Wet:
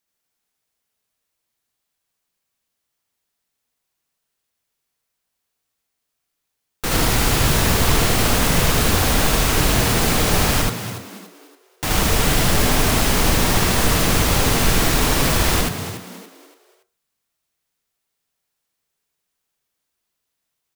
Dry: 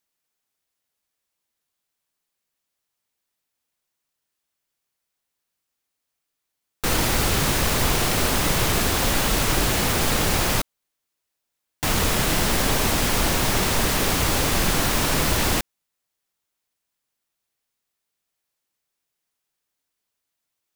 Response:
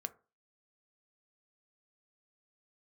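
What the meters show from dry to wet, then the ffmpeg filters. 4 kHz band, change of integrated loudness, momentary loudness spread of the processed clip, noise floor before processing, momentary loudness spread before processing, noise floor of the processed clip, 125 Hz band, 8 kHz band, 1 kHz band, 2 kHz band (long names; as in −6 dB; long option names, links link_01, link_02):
+3.0 dB, +3.5 dB, 7 LU, −81 dBFS, 3 LU, −78 dBFS, +5.5 dB, +3.0 dB, +3.5 dB, +3.0 dB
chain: -filter_complex "[0:a]asplit=5[link_01][link_02][link_03][link_04][link_05];[link_02]adelay=285,afreqshift=88,volume=-11dB[link_06];[link_03]adelay=570,afreqshift=176,volume=-20.4dB[link_07];[link_04]adelay=855,afreqshift=264,volume=-29.7dB[link_08];[link_05]adelay=1140,afreqshift=352,volume=-39.1dB[link_09];[link_01][link_06][link_07][link_08][link_09]amix=inputs=5:normalize=0,asplit=2[link_10][link_11];[1:a]atrim=start_sample=2205,lowshelf=frequency=140:gain=6,adelay=78[link_12];[link_11][link_12]afir=irnorm=-1:irlink=0,volume=1.5dB[link_13];[link_10][link_13]amix=inputs=2:normalize=0"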